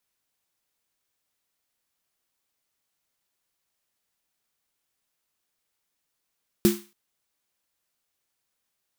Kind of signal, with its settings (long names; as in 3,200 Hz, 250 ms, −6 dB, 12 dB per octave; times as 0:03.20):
synth snare length 0.28 s, tones 210 Hz, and 350 Hz, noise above 940 Hz, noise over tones −10.5 dB, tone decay 0.27 s, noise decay 0.37 s